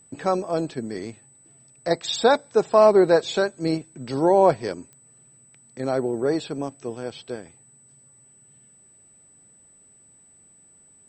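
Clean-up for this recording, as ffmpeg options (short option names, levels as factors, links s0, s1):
-af "adeclick=t=4,bandreject=f=8000:w=30"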